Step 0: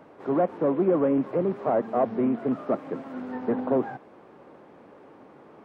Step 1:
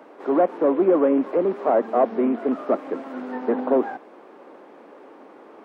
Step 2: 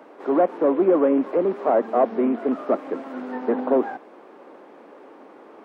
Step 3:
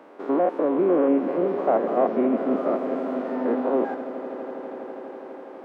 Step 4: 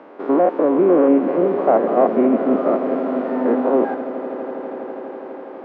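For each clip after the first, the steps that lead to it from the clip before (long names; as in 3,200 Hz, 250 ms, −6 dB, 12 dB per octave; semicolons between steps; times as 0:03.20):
high-pass filter 250 Hz 24 dB per octave; level +5 dB
no processing that can be heard
spectrum averaged block by block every 100 ms; on a send: echo that builds up and dies away 82 ms, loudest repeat 8, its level −18 dB
high-frequency loss of the air 170 metres; level +6.5 dB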